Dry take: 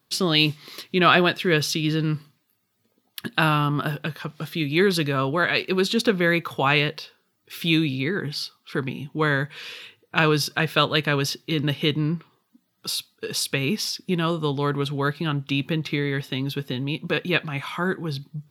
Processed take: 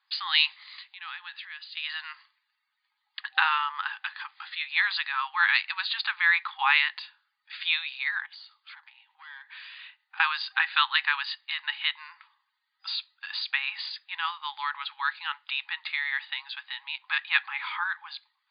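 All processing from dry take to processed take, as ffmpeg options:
ffmpeg -i in.wav -filter_complex "[0:a]asettb=1/sr,asplit=3[link_01][link_02][link_03];[link_01]atrim=end=0.634[link_04];[link_02]atrim=start=0.63:end=1.77,asetpts=PTS-STARTPTS,afade=type=in:duration=0.004:curve=qsin,afade=type=out:start_time=1.136:duration=0.004:curve=qsin,equalizer=frequency=900:width=0.4:gain=-6,acompressor=threshold=-34dB:ratio=5:attack=3.2:release=140:knee=1:detection=peak[link_05];[link_03]atrim=start=1.766[link_06];[link_04][link_05]acrossfade=duration=0.004:curve1=hsin:curve2=qsin[link_07];[link_07][link_06]acrossfade=duration=0.004:curve1=qsin:curve2=hsin,asettb=1/sr,asplit=3[link_08][link_09][link_10];[link_08]atrim=end=8.264[link_11];[link_09]atrim=start=8.26:end=10.2,asetpts=PTS-STARTPTS,afade=type=in:duration=0.004:curve=qsin,afade=type=out:start_time=1.936:duration=0.004:curve=qsin,aeval=exprs='(tanh(10*val(0)+0.4)-tanh(0.4))/10':channel_layout=same,acompressor=threshold=-39dB:ratio=10:attack=3.2:release=140:knee=1:detection=peak[link_12];[link_10]atrim=start=10.196[link_13];[link_11][link_12]acrossfade=duration=0.004:curve1=hsin:curve2=qsin[link_14];[link_14][link_13]acrossfade=duration=0.004:curve1=qsin:curve2=hsin,afftfilt=real='re*between(b*sr/4096,780,4900)':imag='im*between(b*sr/4096,780,4900)':win_size=4096:overlap=0.75,equalizer=frequency=1900:width=3.7:gain=7.5,volume=-2.5dB" out.wav

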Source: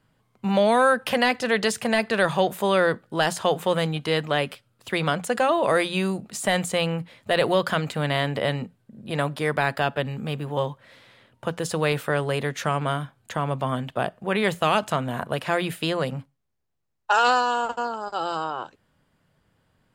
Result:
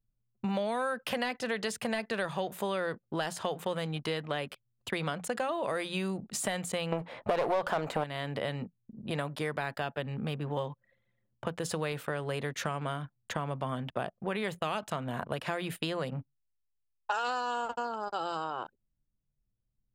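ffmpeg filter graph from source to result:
ffmpeg -i in.wav -filter_complex "[0:a]asettb=1/sr,asplit=3[link_01][link_02][link_03];[link_01]atrim=end=6.924[link_04];[link_02]atrim=start=6.92:end=8.04,asetpts=PTS-STARTPTS,afade=type=in:duration=0.004:curve=qsin,afade=type=out:start_time=1.116:duration=0.004:curve=qsin,aeval=exprs='clip(val(0),-1,0.0266)':channel_layout=same,equalizer=frequency=750:width=0.56:gain=15,acontrast=52[link_05];[link_03]atrim=start=8.036[link_06];[link_04][link_05]acrossfade=duration=0.004:curve1=hsin:curve2=qsin[link_07];[link_07][link_06]acrossfade=duration=0.004:curve1=qsin:curve2=hsin,anlmdn=0.251,acompressor=threshold=-30dB:ratio=4,volume=-1dB" out.wav

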